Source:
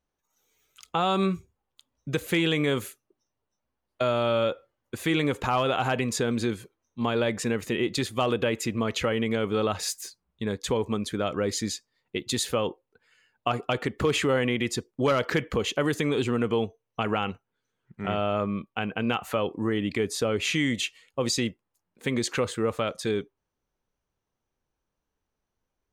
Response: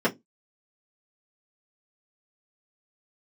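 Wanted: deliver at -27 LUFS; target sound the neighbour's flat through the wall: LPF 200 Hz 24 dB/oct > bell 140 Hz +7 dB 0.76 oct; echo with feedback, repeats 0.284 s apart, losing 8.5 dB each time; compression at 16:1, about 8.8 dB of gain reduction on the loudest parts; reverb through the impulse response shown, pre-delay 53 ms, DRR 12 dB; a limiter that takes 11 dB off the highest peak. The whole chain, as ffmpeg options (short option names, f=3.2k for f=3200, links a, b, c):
-filter_complex "[0:a]acompressor=threshold=-29dB:ratio=16,alimiter=level_in=3dB:limit=-24dB:level=0:latency=1,volume=-3dB,aecho=1:1:284|568|852|1136:0.376|0.143|0.0543|0.0206,asplit=2[a][b];[1:a]atrim=start_sample=2205,adelay=53[c];[b][c]afir=irnorm=-1:irlink=0,volume=-26dB[d];[a][d]amix=inputs=2:normalize=0,lowpass=f=200:w=0.5412,lowpass=f=200:w=1.3066,equalizer=f=140:t=o:w=0.76:g=7,volume=14dB"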